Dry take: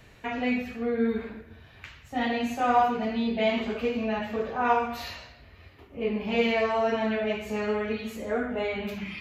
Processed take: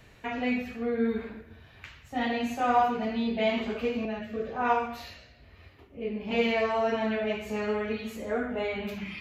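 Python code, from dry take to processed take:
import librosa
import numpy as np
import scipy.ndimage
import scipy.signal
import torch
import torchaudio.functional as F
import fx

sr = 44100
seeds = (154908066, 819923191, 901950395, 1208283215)

y = fx.rotary(x, sr, hz=1.1, at=(4.05, 6.31))
y = F.gain(torch.from_numpy(y), -1.5).numpy()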